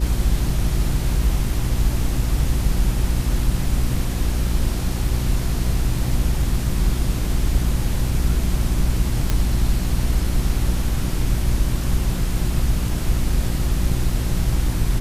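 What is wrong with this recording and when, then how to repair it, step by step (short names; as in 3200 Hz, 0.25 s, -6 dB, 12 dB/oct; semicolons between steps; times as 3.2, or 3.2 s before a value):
hum 60 Hz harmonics 6 -24 dBFS
9.3 pop -7 dBFS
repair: de-click; de-hum 60 Hz, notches 6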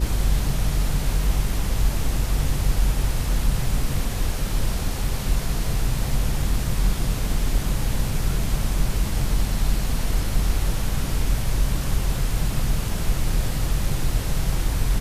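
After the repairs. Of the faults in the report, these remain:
none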